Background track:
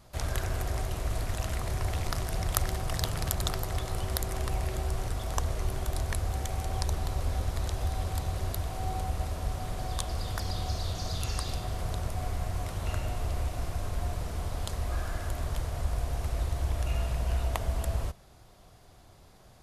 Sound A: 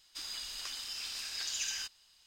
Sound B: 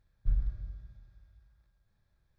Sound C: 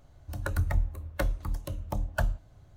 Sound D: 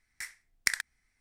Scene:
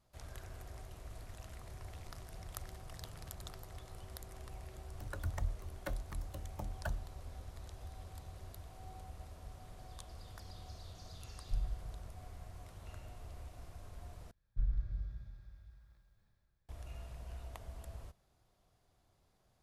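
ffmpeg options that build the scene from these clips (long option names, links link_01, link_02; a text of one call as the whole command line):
ffmpeg -i bed.wav -i cue0.wav -i cue1.wav -i cue2.wav -filter_complex "[2:a]asplit=2[link_01][link_02];[0:a]volume=-18dB[link_03];[link_02]dynaudnorm=framelen=120:gausssize=9:maxgain=11.5dB[link_04];[link_03]asplit=2[link_05][link_06];[link_05]atrim=end=14.314[link_07];[link_04]atrim=end=2.38,asetpts=PTS-STARTPTS,volume=-8dB[link_08];[link_06]atrim=start=16.686[link_09];[3:a]atrim=end=2.76,asetpts=PTS-STARTPTS,volume=-11.5dB,afade=type=in:duration=0.004:curve=hsin,afade=type=out:start_time=2.756:duration=0.004:curve=hsin,adelay=4670[link_10];[link_01]atrim=end=2.38,asetpts=PTS-STARTPTS,volume=-7.5dB,afade=type=in:duration=0.004:curve=hsin,afade=type=out:start_time=2.376:duration=0.004:curve=hsin,adelay=11250[link_11];[link_07][link_08]acrossfade=duration=0.004:curve1=hsin:curve2=hsin[link_12];[link_12][link_09]acrossfade=duration=0.004:curve1=hsin:curve2=hsin[link_13];[link_13][link_10][link_11]amix=inputs=3:normalize=0" out.wav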